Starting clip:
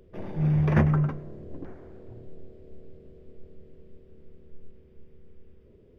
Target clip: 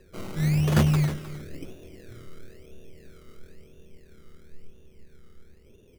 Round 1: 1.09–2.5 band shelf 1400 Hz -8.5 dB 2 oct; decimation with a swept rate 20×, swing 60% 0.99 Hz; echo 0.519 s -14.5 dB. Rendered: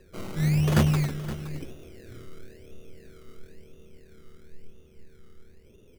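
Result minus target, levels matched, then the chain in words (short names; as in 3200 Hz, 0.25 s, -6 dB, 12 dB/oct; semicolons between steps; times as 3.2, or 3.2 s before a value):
echo 0.208 s late
1.09–2.5 band shelf 1400 Hz -8.5 dB 2 oct; decimation with a swept rate 20×, swing 60% 0.99 Hz; echo 0.311 s -14.5 dB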